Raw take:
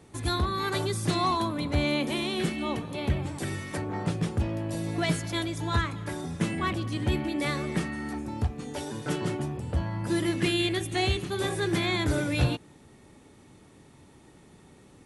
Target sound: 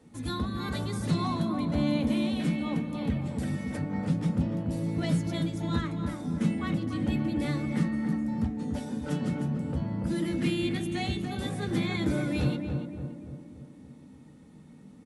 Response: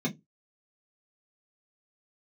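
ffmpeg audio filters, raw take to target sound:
-filter_complex "[0:a]asplit=2[s0][s1];[s1]adelay=289,lowpass=f=1300:p=1,volume=0.596,asplit=2[s2][s3];[s3]adelay=289,lowpass=f=1300:p=1,volume=0.55,asplit=2[s4][s5];[s5]adelay=289,lowpass=f=1300:p=1,volume=0.55,asplit=2[s6][s7];[s7]adelay=289,lowpass=f=1300:p=1,volume=0.55,asplit=2[s8][s9];[s9]adelay=289,lowpass=f=1300:p=1,volume=0.55,asplit=2[s10][s11];[s11]adelay=289,lowpass=f=1300:p=1,volume=0.55,asplit=2[s12][s13];[s13]adelay=289,lowpass=f=1300:p=1,volume=0.55[s14];[s0][s2][s4][s6][s8][s10][s12][s14]amix=inputs=8:normalize=0,asplit=2[s15][s16];[1:a]atrim=start_sample=2205[s17];[s16][s17]afir=irnorm=-1:irlink=0,volume=0.316[s18];[s15][s18]amix=inputs=2:normalize=0,volume=0.473"

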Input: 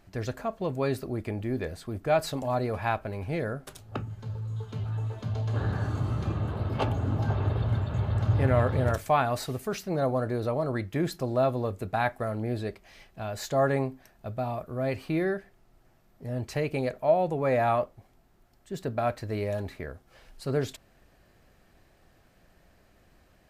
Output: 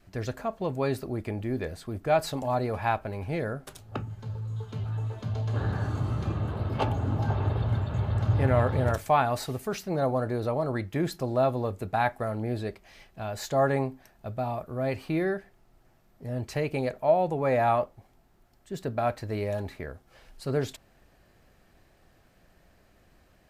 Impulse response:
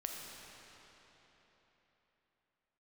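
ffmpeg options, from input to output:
-af "adynamicequalizer=threshold=0.00631:dfrequency=850:dqfactor=5.2:tfrequency=850:tqfactor=5.2:attack=5:release=100:ratio=0.375:range=2:mode=boostabove:tftype=bell"

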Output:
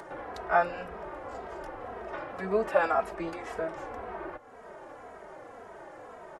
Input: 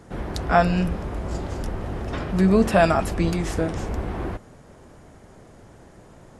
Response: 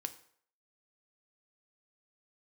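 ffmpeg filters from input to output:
-filter_complex "[0:a]acrossover=split=420 2100:gain=0.0708 1 0.158[s0][s1][s2];[s0][s1][s2]amix=inputs=3:normalize=0,acompressor=mode=upward:threshold=0.0251:ratio=2.5,asplit=2[s3][s4];[s4]adelay=2.8,afreqshift=-1.9[s5];[s3][s5]amix=inputs=2:normalize=1"

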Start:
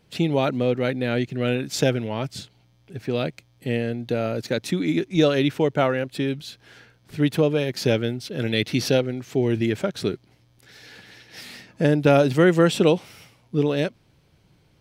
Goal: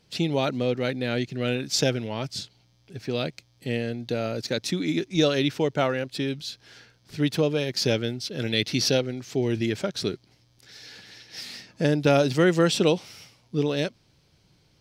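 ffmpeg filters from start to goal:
-af "equalizer=f=5100:w=1.2:g=9.5,volume=0.668"

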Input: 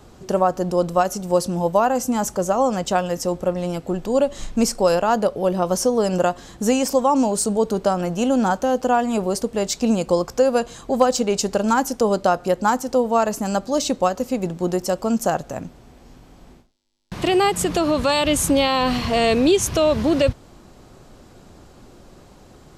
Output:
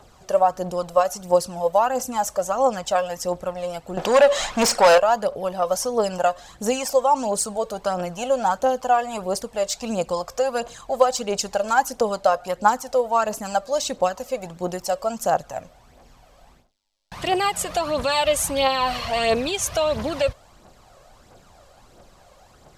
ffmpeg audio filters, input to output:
-filter_complex "[0:a]aphaser=in_gain=1:out_gain=1:delay=1.9:decay=0.51:speed=1.5:type=triangular,asettb=1/sr,asplit=3[s0][s1][s2];[s0]atrim=end=3.974[s3];[s1]atrim=start=3.97:end=4.98,asetpts=PTS-STARTPTS,afade=t=in:d=0.004:c=qsin,afade=t=out:st=1.006:d=0.004:c=qsin,asplit=2[s4][s5];[s5]highpass=f=720:p=1,volume=17.8,asoftclip=type=tanh:threshold=0.794[s6];[s4][s6]amix=inputs=2:normalize=0,lowpass=f=3200:p=1,volume=0.501[s7];[s2]atrim=start=4.976[s8];[s3][s7]acrossfade=d=0.004:c1=hsin:c2=qsin[s9];[s9][s8]acrossfade=d=0.004:c1=qsin:c2=hsin,lowshelf=f=450:t=q:w=1.5:g=-8,volume=0.708"

